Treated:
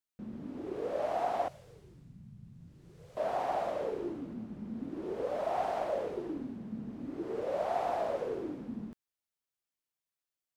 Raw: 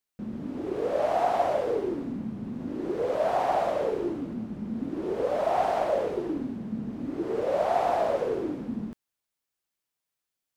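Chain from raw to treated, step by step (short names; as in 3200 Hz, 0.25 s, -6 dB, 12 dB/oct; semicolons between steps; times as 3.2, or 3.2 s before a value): 1.48–3.17 EQ curve 160 Hz 0 dB, 250 Hz -25 dB, 860 Hz -22 dB, 7800 Hz -3 dB; gain -7.5 dB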